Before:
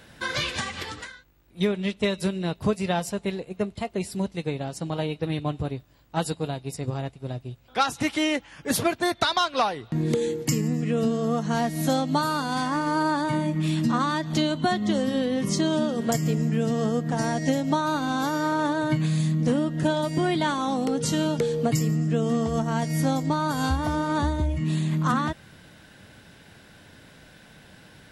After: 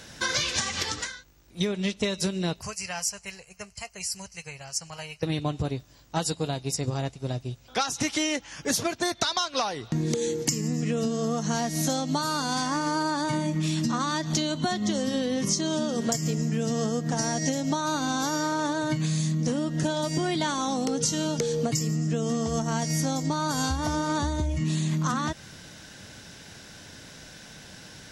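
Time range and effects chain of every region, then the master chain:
2.61–5.23 s: Butterworth band-stop 3.6 kHz, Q 2.5 + amplifier tone stack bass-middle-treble 10-0-10
whole clip: peaking EQ 6 kHz +13.5 dB 0.84 oct; compression, threshold -26 dBFS; trim +2.5 dB

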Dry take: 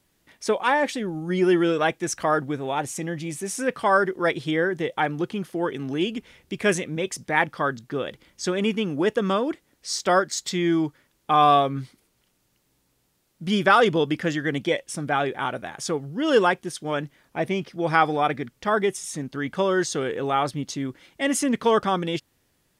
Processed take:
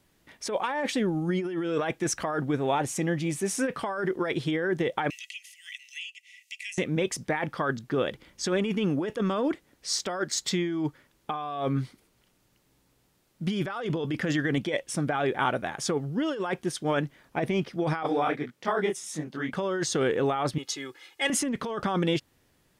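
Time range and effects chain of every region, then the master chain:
5.10–6.78 s: rippled Chebyshev high-pass 1.9 kHz, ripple 9 dB + three bands compressed up and down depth 100%
18.03–19.53 s: high-pass 160 Hz + detune thickener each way 59 cents
20.58–21.30 s: high-pass 1.4 kHz 6 dB/octave + comb 2.4 ms, depth 98%
whole clip: treble shelf 4.1 kHz -4.5 dB; compressor with a negative ratio -26 dBFS, ratio -1; trim -1 dB

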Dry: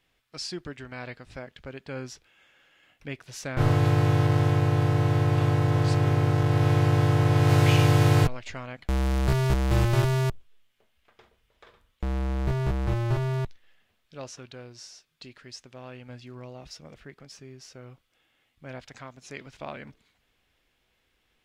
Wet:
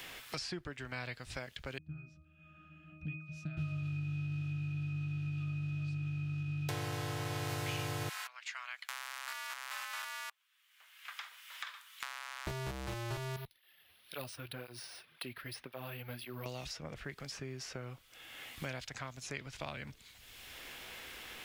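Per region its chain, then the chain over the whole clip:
1.78–6.69 s: resonant low shelf 300 Hz +12 dB, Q 3 + pitch-class resonator D#, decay 0.49 s
8.09–12.47 s: high-pass 1.1 kHz 24 dB/octave + transformer saturation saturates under 640 Hz
13.36–16.46 s: four-pole ladder low-pass 5.2 kHz, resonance 30% + careless resampling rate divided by 3×, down filtered, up hold + cancelling through-zero flanger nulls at 1.9 Hz, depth 5.3 ms
whole clip: tilt EQ +2.5 dB/octave; three bands compressed up and down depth 100%; trim -6.5 dB

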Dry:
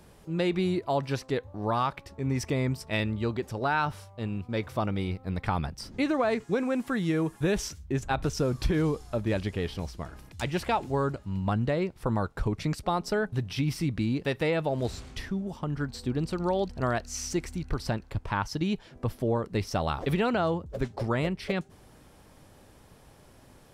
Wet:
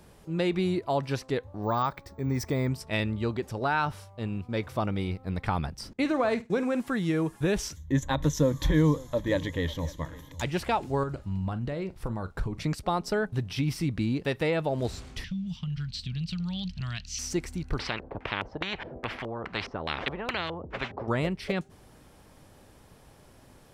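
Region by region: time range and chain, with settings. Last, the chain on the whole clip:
1.63–2.67 s: peaking EQ 2.8 kHz -12 dB 0.27 oct + careless resampling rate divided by 2×, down filtered, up hold
5.93–6.81 s: gate -38 dBFS, range -26 dB + flutter echo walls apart 8.8 m, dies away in 0.21 s
7.76–10.42 s: rippled EQ curve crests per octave 1.1, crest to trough 13 dB + delay 547 ms -20.5 dB
11.03–12.60 s: compression, threshold -29 dBFS + bass shelf 63 Hz +8.5 dB + doubling 42 ms -14 dB
15.24–17.19 s: FFT filter 110 Hz 0 dB, 180 Hz +7 dB, 280 Hz -21 dB, 410 Hz -30 dB, 1.7 kHz -6 dB, 2.9 kHz +10 dB, 4.2 kHz +7 dB, 6.3 kHz 0 dB, 9.4 kHz -11 dB + compression, threshold -29 dBFS
17.79–21.08 s: high-pass 49 Hz + LFO low-pass square 2.4 Hz 490–2200 Hz + spectrum-flattening compressor 4:1
whole clip: none

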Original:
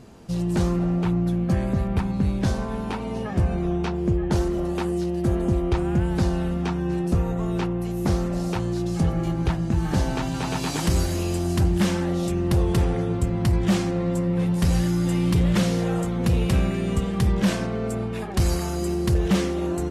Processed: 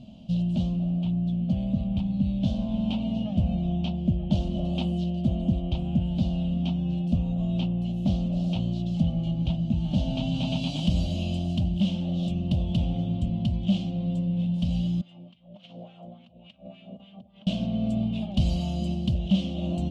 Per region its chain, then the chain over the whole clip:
15.01–17.47 s: compressor with a negative ratio -23 dBFS, ratio -0.5 + LFO band-pass sine 3.5 Hz 510–1900 Hz
whole clip: FFT filter 100 Hz 0 dB, 230 Hz +8 dB, 430 Hz -21 dB, 610 Hz +5 dB, 930 Hz -14 dB, 1.8 kHz -28 dB, 3 kHz +9 dB, 5.1 kHz -8 dB, 8.8 kHz -17 dB, 14 kHz -28 dB; gain riding 0.5 s; trim -5.5 dB

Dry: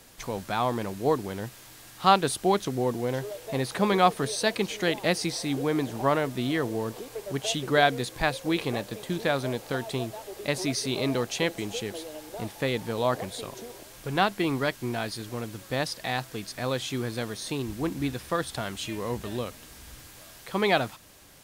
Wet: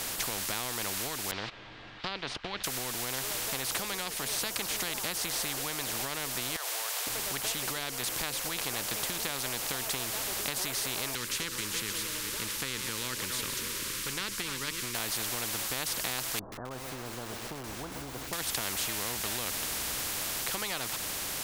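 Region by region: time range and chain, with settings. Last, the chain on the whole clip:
1.31–2.64 s: low-pass 3.6 kHz 24 dB/octave + gate -40 dBFS, range -18 dB
6.56–7.07 s: steep high-pass 660 Hz 48 dB/octave + compression 4:1, threshold -37 dBFS
11.15–14.95 s: chunks repeated in reverse 230 ms, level -14 dB + Butterworth band-stop 720 Hz, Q 0.65 + treble shelf 7.9 kHz -11.5 dB
16.39–18.33 s: Gaussian low-pass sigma 12 samples + bit-crushed delay 130 ms, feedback 55%, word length 8-bit, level -13 dB
whole clip: compression, threshold -31 dBFS; spectrum-flattening compressor 4:1; trim +4 dB

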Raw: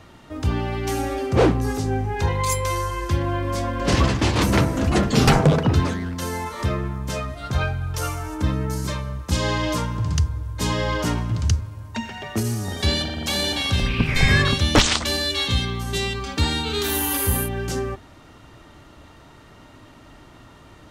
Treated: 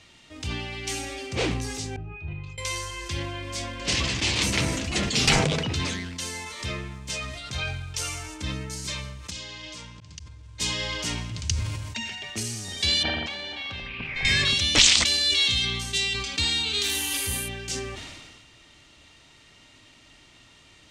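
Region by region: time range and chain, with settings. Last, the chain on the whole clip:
1.96–2.58 s: distance through air 130 m + pitch-class resonator D#, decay 0.1 s
9.30–10.60 s: low-pass 7.9 kHz + slow attack 348 ms + compression, threshold -30 dBFS
13.03–14.25 s: low-pass 1 kHz + tilt shelf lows -9 dB, about 660 Hz
whole clip: high-order bell 4.3 kHz +14.5 dB 2.5 oct; decay stretcher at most 33 dB/s; trim -12 dB

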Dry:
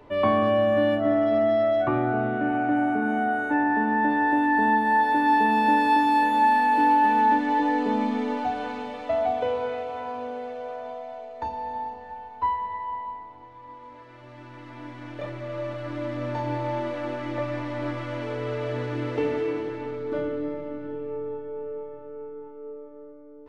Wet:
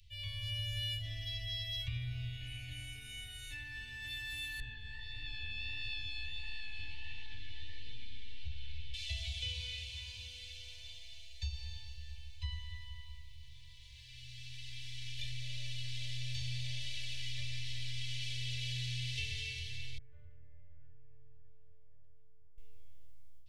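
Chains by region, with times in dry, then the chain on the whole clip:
4.60–8.94 s: low-pass 3.6 kHz + tilt EQ -2.5 dB/octave + flange 1.5 Hz, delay 5.7 ms, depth 9.7 ms, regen -38%
19.98–22.58 s: steep low-pass 1.5 kHz + bass shelf 380 Hz -11 dB + compression 1.5:1, threshold -42 dBFS
whole clip: level rider gain up to 11.5 dB; inverse Chebyshev band-stop 190–1400 Hz, stop band 50 dB; compression, threshold -35 dBFS; trim +1.5 dB

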